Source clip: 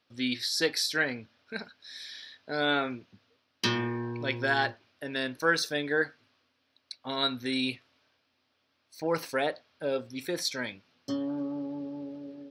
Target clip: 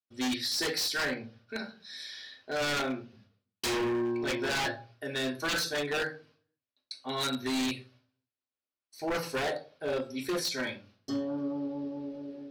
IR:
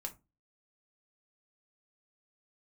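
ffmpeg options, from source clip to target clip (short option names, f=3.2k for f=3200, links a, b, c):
-filter_complex "[0:a]agate=range=-33dB:threshold=-58dB:ratio=3:detection=peak[a];[1:a]atrim=start_sample=2205,asetrate=27783,aresample=44100[b];[a][b]afir=irnorm=-1:irlink=0,aeval=exprs='0.0562*(abs(mod(val(0)/0.0562+3,4)-2)-1)':c=same"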